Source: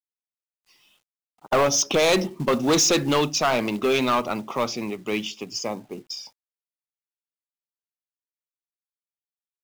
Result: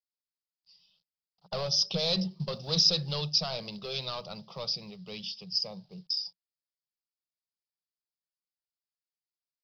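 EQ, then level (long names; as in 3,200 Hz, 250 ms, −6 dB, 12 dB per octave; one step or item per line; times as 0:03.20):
drawn EQ curve 120 Hz 0 dB, 180 Hz +11 dB, 260 Hz −26 dB, 500 Hz −3 dB, 930 Hz −9 dB, 2,100 Hz −13 dB, 5,000 Hz +15 dB, 7,100 Hz −26 dB, 14,000 Hz −18 dB
−9.0 dB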